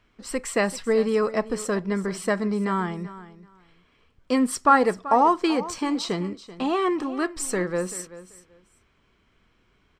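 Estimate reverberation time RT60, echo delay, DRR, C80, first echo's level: no reverb audible, 385 ms, no reverb audible, no reverb audible, −16.0 dB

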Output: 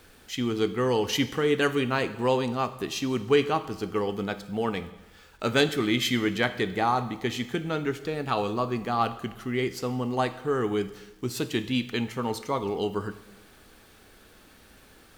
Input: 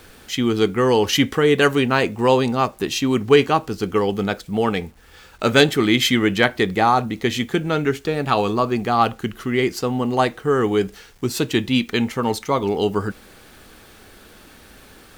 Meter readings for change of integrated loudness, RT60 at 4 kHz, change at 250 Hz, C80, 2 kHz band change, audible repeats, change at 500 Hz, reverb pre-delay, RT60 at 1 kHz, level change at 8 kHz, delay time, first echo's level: −8.0 dB, 1.0 s, −8.0 dB, 16.0 dB, −8.5 dB, no echo audible, −8.0 dB, 4 ms, 1.1 s, −8.0 dB, no echo audible, no echo audible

